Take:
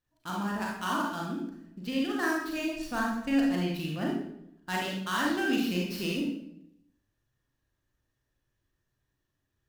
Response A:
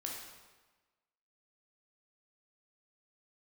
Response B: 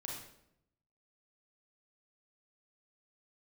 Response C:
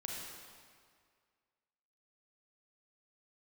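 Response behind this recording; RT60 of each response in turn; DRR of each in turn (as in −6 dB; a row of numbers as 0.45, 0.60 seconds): B; 1.3, 0.75, 2.0 seconds; −2.0, −3.0, −2.0 decibels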